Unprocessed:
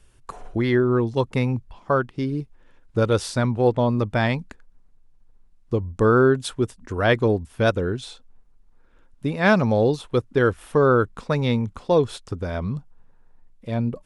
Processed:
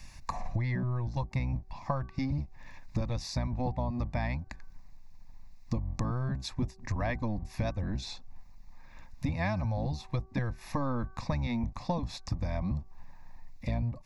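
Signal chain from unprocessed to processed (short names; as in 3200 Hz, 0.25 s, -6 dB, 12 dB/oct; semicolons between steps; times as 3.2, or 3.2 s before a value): octaver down 1 oct, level 0 dB; fixed phaser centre 2100 Hz, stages 8; de-hum 380.9 Hz, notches 4; compressor 10:1, threshold -34 dBFS, peak gain reduction 20 dB; mismatched tape noise reduction encoder only; gain +5.5 dB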